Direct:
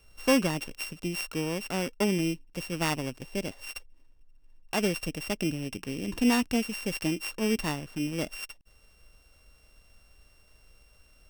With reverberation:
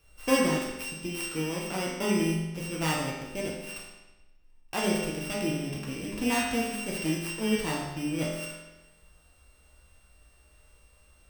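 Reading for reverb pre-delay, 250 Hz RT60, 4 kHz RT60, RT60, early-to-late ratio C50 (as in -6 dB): 5 ms, 1.1 s, 1.0 s, 1.1 s, 1.5 dB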